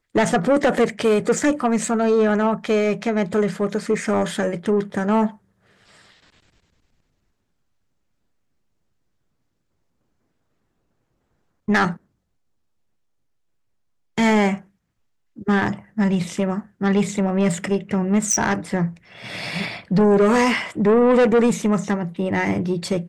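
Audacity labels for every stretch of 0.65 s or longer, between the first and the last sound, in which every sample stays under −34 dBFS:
5.310000	11.680000	silence
11.960000	14.180000	silence
14.580000	15.380000	silence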